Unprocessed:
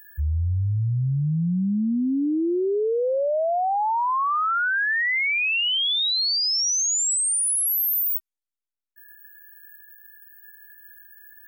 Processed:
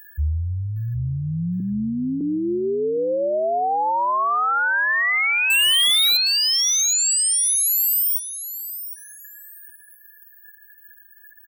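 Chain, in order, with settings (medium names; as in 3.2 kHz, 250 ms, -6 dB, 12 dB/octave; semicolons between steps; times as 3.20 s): reverb removal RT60 1.8 s; 1.60–2.21 s: inverse Chebyshev low-pass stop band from 1.1 kHz, stop band 60 dB; 5.50–6.17 s: waveshaping leveller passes 5; feedback delay 763 ms, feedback 26%, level -12 dB; trim +3 dB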